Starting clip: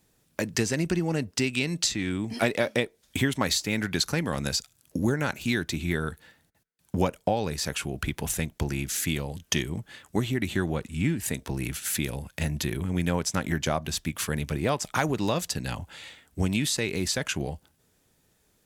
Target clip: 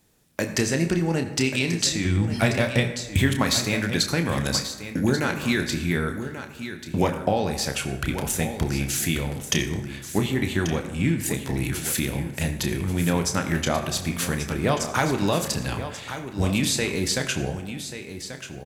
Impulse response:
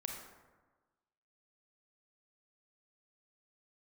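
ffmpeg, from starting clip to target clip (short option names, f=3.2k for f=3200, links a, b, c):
-filter_complex "[0:a]asplit=3[a][b][c];[a]afade=t=out:st=2.04:d=0.02[d];[b]asubboost=boost=8.5:cutoff=130,afade=t=in:st=2.04:d=0.02,afade=t=out:st=3.2:d=0.02[e];[c]afade=t=in:st=3.2:d=0.02[f];[d][e][f]amix=inputs=3:normalize=0,aecho=1:1:1136:0.282,asplit=2[g][h];[1:a]atrim=start_sample=2205,adelay=30[i];[h][i]afir=irnorm=-1:irlink=0,volume=-5dB[j];[g][j]amix=inputs=2:normalize=0,volume=2.5dB"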